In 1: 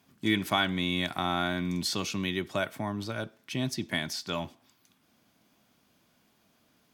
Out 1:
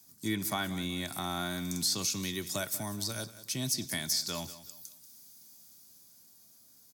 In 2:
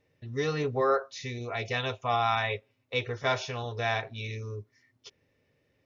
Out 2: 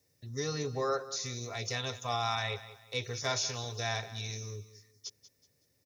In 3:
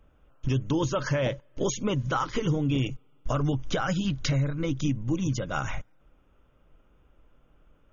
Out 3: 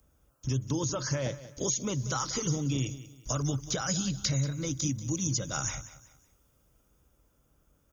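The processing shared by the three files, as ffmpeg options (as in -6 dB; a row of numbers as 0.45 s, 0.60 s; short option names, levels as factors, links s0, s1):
-filter_complex "[0:a]highpass=70,acrossover=split=2900[s0][s1];[s1]acompressor=threshold=0.00562:ratio=4:attack=1:release=60[s2];[s0][s2]amix=inputs=2:normalize=0,lowshelf=f=100:g=10.5,acrossover=split=160|2300[s3][s4][s5];[s5]dynaudnorm=f=140:g=21:m=1.88[s6];[s3][s4][s6]amix=inputs=3:normalize=0,aexciter=amount=9.3:drive=5.5:freq=4300,asplit=2[s7][s8];[s8]aecho=0:1:187|374|561:0.168|0.0571|0.0194[s9];[s7][s9]amix=inputs=2:normalize=0,volume=0.447"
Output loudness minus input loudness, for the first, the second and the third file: -2.5 LU, -4.5 LU, -3.0 LU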